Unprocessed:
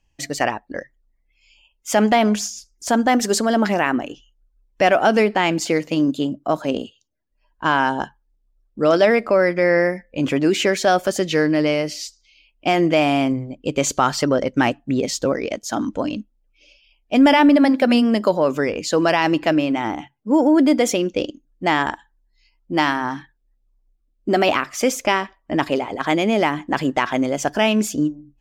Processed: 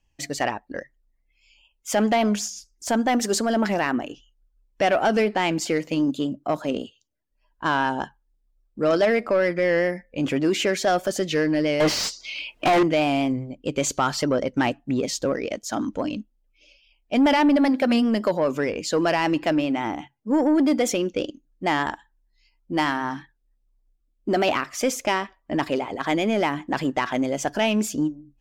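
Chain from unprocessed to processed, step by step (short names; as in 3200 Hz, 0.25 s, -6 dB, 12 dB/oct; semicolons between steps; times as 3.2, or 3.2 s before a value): 11.8–12.83 overdrive pedal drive 37 dB, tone 1700 Hz, clips at -6 dBFS; soft clip -9 dBFS, distortion -19 dB; vibrato 5 Hz 34 cents; gain -3 dB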